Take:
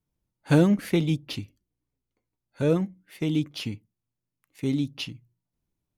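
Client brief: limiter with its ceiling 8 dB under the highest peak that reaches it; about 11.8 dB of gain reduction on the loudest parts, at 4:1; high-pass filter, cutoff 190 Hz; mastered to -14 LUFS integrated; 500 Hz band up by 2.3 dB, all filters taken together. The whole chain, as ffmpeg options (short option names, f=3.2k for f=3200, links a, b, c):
-af "highpass=190,equalizer=f=500:t=o:g=3,acompressor=threshold=-29dB:ratio=4,volume=22.5dB,alimiter=limit=-1.5dB:level=0:latency=1"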